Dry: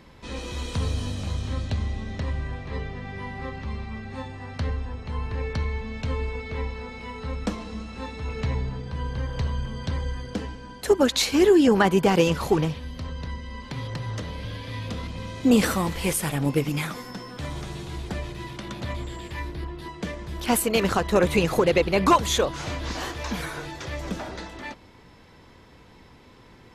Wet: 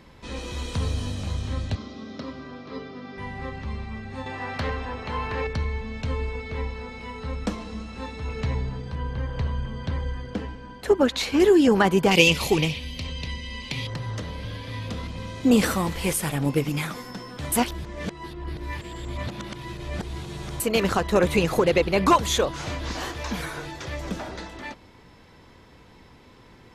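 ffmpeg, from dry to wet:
ffmpeg -i in.wav -filter_complex "[0:a]asettb=1/sr,asplit=3[link_01][link_02][link_03];[link_01]atrim=end=1.754[link_04];[link_02]atrim=start=1.75:end=3.18,asetpts=PTS-STARTPTS,afade=type=in:duration=0.004:curve=qsin,afade=type=out:start_time=1.426:duration=0.004:curve=qsin,highpass=250,equalizer=frequency=260:width_type=q:width=4:gain=8,equalizer=frequency=850:width_type=q:width=4:gain=-7,equalizer=frequency=1300:width_type=q:width=4:gain=6,equalizer=frequency=1800:width_type=q:width=4:gain=-10,equalizer=frequency=2700:width_type=q:width=4:gain=-5,equalizer=frequency=5100:width_type=q:width=4:gain=5,lowpass=frequency=5700:width=0.5412,lowpass=frequency=5700:width=1.3066[link_05];[link_03]atrim=start=3.176[link_06];[link_04][link_05]acrossfade=duration=0.004:curve1=hsin:curve2=qsin[link_07];[link_07][link_06]acrossfade=duration=0.004:curve1=qsin:curve2=hsin,asettb=1/sr,asplit=3[link_08][link_09][link_10];[link_08]atrim=end=4.264[link_11];[link_09]atrim=start=4.26:end=5.47,asetpts=PTS-STARTPTS,afade=type=in:duration=0.004:curve=qsin,afade=type=out:start_time=1.206:duration=0.004:curve=qsin,asplit=2[link_12][link_13];[link_13]highpass=frequency=720:poles=1,volume=18dB,asoftclip=type=tanh:threshold=-17dB[link_14];[link_12][link_14]amix=inputs=2:normalize=0,lowpass=frequency=2700:poles=1,volume=-6dB[link_15];[link_10]atrim=start=5.466[link_16];[link_11][link_15]acrossfade=duration=0.004:curve1=hsin:curve2=qsin[link_17];[link_17][link_16]acrossfade=duration=0.004:curve1=qsin:curve2=hsin,asettb=1/sr,asplit=3[link_18][link_19][link_20];[link_18]atrim=end=8.954[link_21];[link_19]atrim=start=8.95:end=11.4,asetpts=PTS-STARTPTS,afade=type=in:duration=0.004:curve=qsin,afade=type=out:start_time=2.446:duration=0.004:curve=qsin,bass=frequency=250:gain=0,treble=frequency=4000:gain=-9[link_22];[link_20]atrim=start=11.396[link_23];[link_21][link_22]acrossfade=duration=0.004:curve1=hsin:curve2=qsin[link_24];[link_24][link_23]acrossfade=duration=0.004:curve1=qsin:curve2=hsin,asettb=1/sr,asplit=3[link_25][link_26][link_27];[link_25]atrim=end=12.114[link_28];[link_26]atrim=start=12.11:end=13.87,asetpts=PTS-STARTPTS,afade=type=in:duration=0.004:curve=qsin,afade=type=out:start_time=1.756:duration=0.004:curve=qsin,highshelf=frequency=1900:width_type=q:width=3:gain=7.5[link_29];[link_27]atrim=start=13.866[link_30];[link_28][link_29]acrossfade=duration=0.004:curve1=hsin:curve2=qsin[link_31];[link_31][link_30]acrossfade=duration=0.004:curve1=qsin:curve2=hsin,asplit=3[link_32][link_33][link_34];[link_32]atrim=end=17.522[link_35];[link_33]atrim=start=17.518:end=20.602,asetpts=PTS-STARTPTS,areverse[link_36];[link_34]atrim=start=20.598[link_37];[link_35][link_36]acrossfade=duration=0.004:curve1=hsin:curve2=hsin[link_38];[link_38][link_37]acrossfade=duration=0.004:curve1=hsin:curve2=hsin" out.wav

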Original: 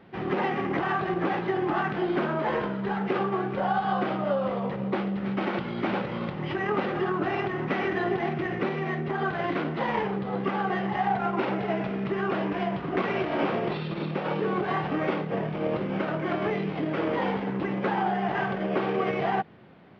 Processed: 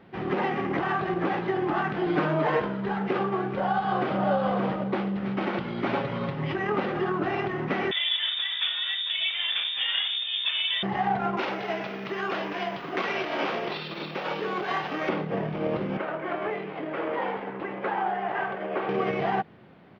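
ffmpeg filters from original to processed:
ffmpeg -i in.wav -filter_complex "[0:a]asettb=1/sr,asplit=3[link_01][link_02][link_03];[link_01]atrim=end=2.064[link_04];[link_02]atrim=start=2.06:end=2.6,asetpts=PTS-STARTPTS,afade=type=in:duration=0.004:curve=qsin,afade=type=out:start_time=0.536:duration=0.004:curve=qsin,aecho=1:1:6.6:0.94,atrim=end_sample=23814[link_05];[link_03]atrim=start=2.596[link_06];[link_04][link_05]acrossfade=duration=0.004:curve1=hsin:curve2=qsin[link_07];[link_07][link_06]acrossfade=duration=0.004:curve1=qsin:curve2=hsin,asplit=2[link_08][link_09];[link_09]afade=type=in:start_time=3.34:duration=0.01,afade=type=out:start_time=4.26:duration=0.01,aecho=0:1:570|1140|1710:0.668344|0.100252|0.0150377[link_10];[link_08][link_10]amix=inputs=2:normalize=0,asettb=1/sr,asplit=3[link_11][link_12][link_13];[link_11]atrim=end=5.854[link_14];[link_12]atrim=start=5.85:end=6.52,asetpts=PTS-STARTPTS,afade=type=in:duration=0.004:curve=qsin,afade=type=out:start_time=0.666:duration=0.004:curve=qsin,aecho=1:1:7.3:0.72,atrim=end_sample=29547[link_15];[link_13]atrim=start=6.516[link_16];[link_14][link_15]acrossfade=duration=0.004:curve1=hsin:curve2=qsin[link_17];[link_17][link_16]acrossfade=duration=0.004:curve1=qsin:curve2=hsin,asettb=1/sr,asplit=3[link_18][link_19][link_20];[link_18]atrim=end=7.914[link_21];[link_19]atrim=start=7.91:end=10.83,asetpts=PTS-STARTPTS,afade=type=in:duration=0.004:curve=qsin,afade=type=out:start_time=2.916:duration=0.004:curve=qsin,lowpass=frequency=3200:width_type=q:width=0.5098,lowpass=frequency=3200:width_type=q:width=0.6013,lowpass=frequency=3200:width_type=q:width=0.9,lowpass=frequency=3200:width_type=q:width=2.563,afreqshift=-3800[link_22];[link_20]atrim=start=10.826[link_23];[link_21][link_22]acrossfade=duration=0.004:curve1=hsin:curve2=qsin[link_24];[link_24][link_23]acrossfade=duration=0.004:curve1=qsin:curve2=hsin,asettb=1/sr,asplit=3[link_25][link_26][link_27];[link_25]atrim=end=11.374[link_28];[link_26]atrim=start=11.37:end=15.09,asetpts=PTS-STARTPTS,afade=type=in:duration=0.004:curve=qsin,afade=type=out:start_time=3.716:duration=0.004:curve=qsin,aemphasis=mode=production:type=riaa[link_29];[link_27]atrim=start=15.086[link_30];[link_28][link_29]acrossfade=duration=0.004:curve1=hsin:curve2=qsin[link_31];[link_31][link_30]acrossfade=duration=0.004:curve1=qsin:curve2=hsin,asettb=1/sr,asplit=3[link_32][link_33][link_34];[link_32]atrim=end=15.974[link_35];[link_33]atrim=start=15.97:end=18.89,asetpts=PTS-STARTPTS,afade=type=in:duration=0.004:curve=qsin,afade=type=out:start_time=2.916:duration=0.004:curve=qsin,acrossover=split=360 3100:gain=0.224 1 0.224[link_36][link_37][link_38];[link_36][link_37][link_38]amix=inputs=3:normalize=0[link_39];[link_34]atrim=start=18.886[link_40];[link_35][link_39]acrossfade=duration=0.004:curve1=hsin:curve2=qsin[link_41];[link_41][link_40]acrossfade=duration=0.004:curve1=qsin:curve2=hsin" out.wav

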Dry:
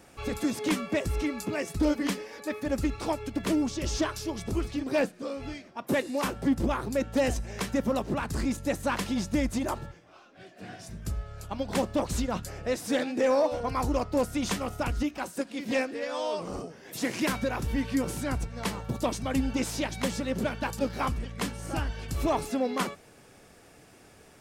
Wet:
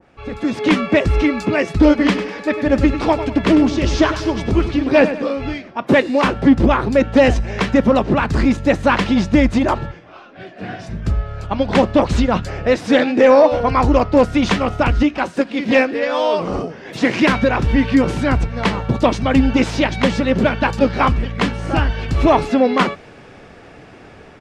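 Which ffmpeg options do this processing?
ffmpeg -i in.wav -filter_complex "[0:a]asplit=3[link_01][link_02][link_03];[link_01]afade=type=out:start_time=1.98:duration=0.02[link_04];[link_02]aecho=1:1:99|198|297|396:0.266|0.114|0.0492|0.0212,afade=type=in:start_time=1.98:duration=0.02,afade=type=out:start_time=5.3:duration=0.02[link_05];[link_03]afade=type=in:start_time=5.3:duration=0.02[link_06];[link_04][link_05][link_06]amix=inputs=3:normalize=0,dynaudnorm=framelen=150:gausssize=7:maxgain=12dB,lowpass=3000,adynamicequalizer=threshold=0.0224:dfrequency=1900:dqfactor=0.7:tfrequency=1900:tqfactor=0.7:attack=5:release=100:ratio=0.375:range=1.5:mode=boostabove:tftype=highshelf,volume=2.5dB" out.wav

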